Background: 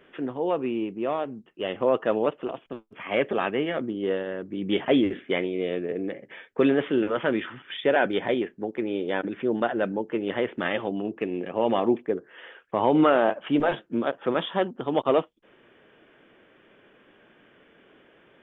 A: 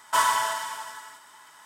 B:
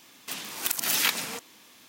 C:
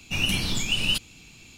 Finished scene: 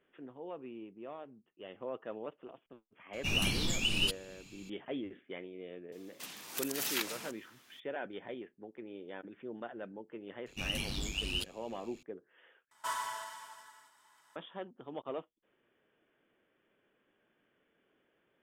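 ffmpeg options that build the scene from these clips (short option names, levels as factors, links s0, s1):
-filter_complex "[3:a]asplit=2[s0][s1];[0:a]volume=0.119[s2];[s0]equalizer=f=330:t=o:w=0.77:g=3[s3];[s1]aeval=exprs='val(0)*sin(2*PI*49*n/s)':c=same[s4];[s2]asplit=2[s5][s6];[s5]atrim=end=12.714[s7];[1:a]atrim=end=1.65,asetpts=PTS-STARTPTS,volume=0.178[s8];[s6]atrim=start=14.356[s9];[s3]atrim=end=1.57,asetpts=PTS-STARTPTS,volume=0.473,afade=t=in:d=0.004:c=hsin,afade=t=out:st=1.566:d=0.004:c=hsin,adelay=138033S[s10];[2:a]atrim=end=1.88,asetpts=PTS-STARTPTS,volume=0.299,afade=t=in:d=0.004:c=hsin,afade=t=out:st=1.876:d=0.004:c=hsin,adelay=5920[s11];[s4]atrim=end=1.57,asetpts=PTS-STARTPTS,volume=0.355,afade=t=in:d=0.004:c=hsin,afade=t=out:st=1.566:d=0.004:c=hsin,adelay=10460[s12];[s7][s8]acrossfade=d=0.004:c1=hsin:c2=hsin[s13];[s13][s9]acrossfade=d=0.004:c1=hsin:c2=hsin[s14];[s14][s10][s11][s12]amix=inputs=4:normalize=0"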